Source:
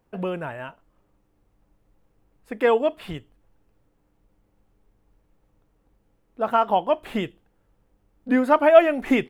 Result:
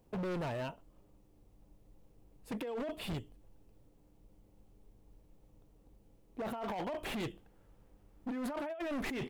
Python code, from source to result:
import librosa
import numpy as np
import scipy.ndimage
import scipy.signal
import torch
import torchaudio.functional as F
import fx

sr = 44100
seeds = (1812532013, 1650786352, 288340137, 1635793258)

y = fx.over_compress(x, sr, threshold_db=-28.0, ratio=-1.0)
y = fx.peak_eq(y, sr, hz=1500.0, db=fx.steps((0.0, -10.5), (6.64, -2.5)), octaves=1.4)
y = np.clip(y, -10.0 ** (-30.5 / 20.0), 10.0 ** (-30.5 / 20.0))
y = F.gain(torch.from_numpy(y), -4.5).numpy()